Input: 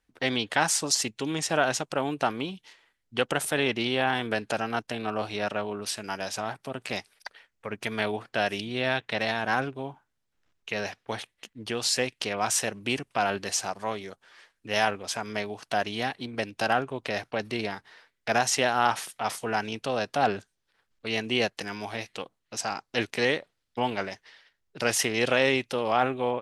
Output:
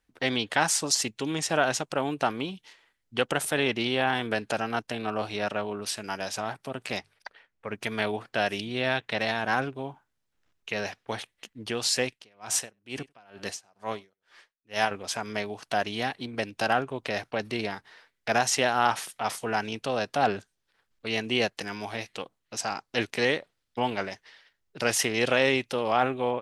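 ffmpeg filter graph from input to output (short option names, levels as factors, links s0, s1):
-filter_complex "[0:a]asettb=1/sr,asplit=3[s0][s1][s2];[s0]atrim=end=6.994[s3];[s1]atrim=start=6.99:end=7.67,asetpts=PTS-STARTPTS,afade=t=in:d=0.004:c=qsin,afade=t=out:st=0.676:d=0.004:c=qsin,lowpass=f=2400:p=1,bandreject=f=50:t=h:w=6,bandreject=f=100:t=h:w=6,bandreject=f=150:t=h:w=6[s4];[s2]atrim=start=7.666[s5];[s3][s4]acrossfade=d=0.004:c1=hsin:c2=qsin[s6];[s6][s5]acrossfade=d=0.004:c1=qsin:c2=hsin,asettb=1/sr,asplit=3[s7][s8][s9];[s7]atrim=end=12.104[s10];[s8]atrim=start=12.1:end=14.91,asetpts=PTS-STARTPTS,afade=t=in:d=0.004:c=qsin,afade=t=out:st=2.806:d=0.004:c=qsin,aecho=1:1:98:0.0794,atrim=end_sample=123921,aeval=exprs='val(0)*pow(10,-32*(0.5-0.5*cos(2*PI*2.2*n/s))/20)':c=same[s11];[s9]atrim=start=14.906[s12];[s10][s11]acrossfade=d=0.004:c1=hsin:c2=qsin[s13];[s13][s12]acrossfade=d=0.004:c1=qsin:c2=hsin"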